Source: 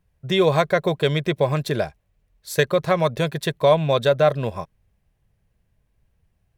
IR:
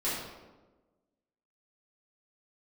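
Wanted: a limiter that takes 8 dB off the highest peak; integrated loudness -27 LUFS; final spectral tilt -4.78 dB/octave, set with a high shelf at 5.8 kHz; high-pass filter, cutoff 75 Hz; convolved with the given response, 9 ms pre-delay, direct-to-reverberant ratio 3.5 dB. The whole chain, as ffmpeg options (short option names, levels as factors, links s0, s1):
-filter_complex "[0:a]highpass=75,highshelf=f=5800:g=7,alimiter=limit=0.251:level=0:latency=1,asplit=2[s0][s1];[1:a]atrim=start_sample=2205,adelay=9[s2];[s1][s2]afir=irnorm=-1:irlink=0,volume=0.282[s3];[s0][s3]amix=inputs=2:normalize=0,volume=0.562"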